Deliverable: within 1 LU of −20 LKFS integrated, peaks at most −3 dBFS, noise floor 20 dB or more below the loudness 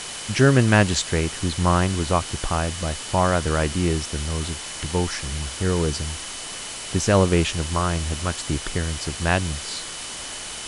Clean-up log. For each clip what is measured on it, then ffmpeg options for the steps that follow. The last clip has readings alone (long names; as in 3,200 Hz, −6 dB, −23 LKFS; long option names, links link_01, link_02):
interfering tone 3,000 Hz; level of the tone −41 dBFS; background noise floor −34 dBFS; target noise floor −43 dBFS; integrated loudness −23.0 LKFS; sample peak −1.5 dBFS; target loudness −20.0 LKFS
→ -af "bandreject=frequency=3000:width=30"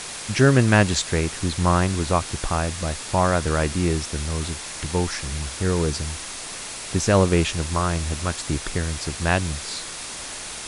interfering tone none found; background noise floor −34 dBFS; target noise floor −43 dBFS
→ -af "afftdn=noise_reduction=9:noise_floor=-34"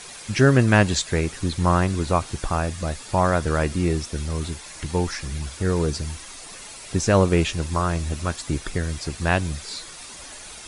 background noise floor −40 dBFS; target noise floor −43 dBFS
→ -af "afftdn=noise_reduction=6:noise_floor=-40"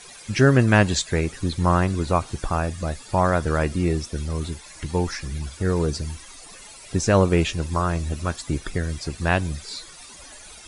background noise floor −44 dBFS; integrated loudness −23.0 LKFS; sample peak −2.0 dBFS; target loudness −20.0 LKFS
→ -af "volume=3dB,alimiter=limit=-3dB:level=0:latency=1"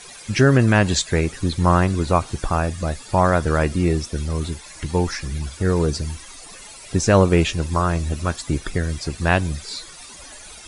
integrated loudness −20.5 LKFS; sample peak −3.0 dBFS; background noise floor −41 dBFS